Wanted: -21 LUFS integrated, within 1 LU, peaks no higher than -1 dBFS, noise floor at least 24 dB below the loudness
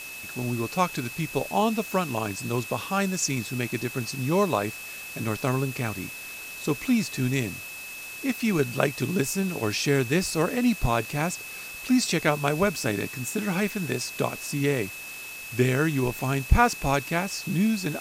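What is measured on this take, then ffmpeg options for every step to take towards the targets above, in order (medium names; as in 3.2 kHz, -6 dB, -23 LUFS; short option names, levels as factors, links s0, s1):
steady tone 2.6 kHz; tone level -38 dBFS; noise floor -39 dBFS; noise floor target -51 dBFS; loudness -26.5 LUFS; peak level -5.0 dBFS; loudness target -21.0 LUFS
-> -af "bandreject=f=2600:w=30"
-af "afftdn=nr=12:nf=-39"
-af "volume=1.88,alimiter=limit=0.891:level=0:latency=1"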